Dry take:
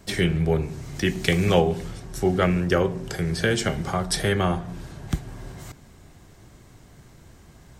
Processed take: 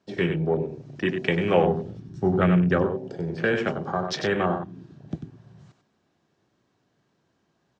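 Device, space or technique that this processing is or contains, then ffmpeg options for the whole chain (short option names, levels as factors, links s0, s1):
over-cleaned archive recording: -filter_complex "[0:a]lowpass=f=7300:w=0.5412,lowpass=f=7300:w=1.3066,bandreject=f=2100:w=10,asplit=3[s0][s1][s2];[s0]afade=t=out:st=1.63:d=0.02[s3];[s1]asubboost=boost=4.5:cutoff=200,afade=t=in:st=1.63:d=0.02,afade=t=out:st=2.84:d=0.02[s4];[s2]afade=t=in:st=2.84:d=0.02[s5];[s3][s4][s5]amix=inputs=3:normalize=0,highpass=190,lowpass=5400,aecho=1:1:95:0.447,afwtdn=0.0282"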